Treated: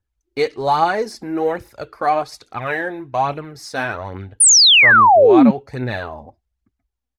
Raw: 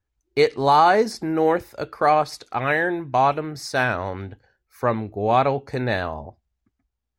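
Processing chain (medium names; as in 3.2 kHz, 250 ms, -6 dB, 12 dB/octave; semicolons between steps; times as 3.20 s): resampled via 32 kHz; phaser 1.2 Hz, delay 4.2 ms, feedback 46%; painted sound fall, 4.40–5.51 s, 200–10000 Hz -7 dBFS; trim -2.5 dB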